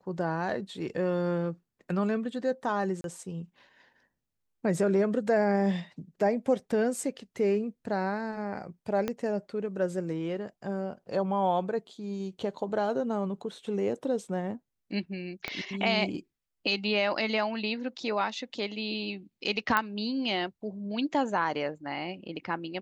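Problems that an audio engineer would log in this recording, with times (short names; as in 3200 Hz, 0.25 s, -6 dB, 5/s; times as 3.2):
3.01–3.04 gap 32 ms
9.08 pop -16 dBFS
15.48 pop -17 dBFS
19.77 pop -12 dBFS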